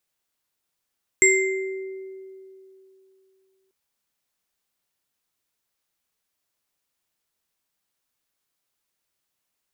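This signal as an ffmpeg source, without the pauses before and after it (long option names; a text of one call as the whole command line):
ffmpeg -f lavfi -i "aevalsrc='0.126*pow(10,-3*t/2.97)*sin(2*PI*382*t)+0.2*pow(10,-3*t/1.16)*sin(2*PI*2090*t)+0.211*pow(10,-3*t/0.52)*sin(2*PI*7540*t)':duration=2.49:sample_rate=44100" out.wav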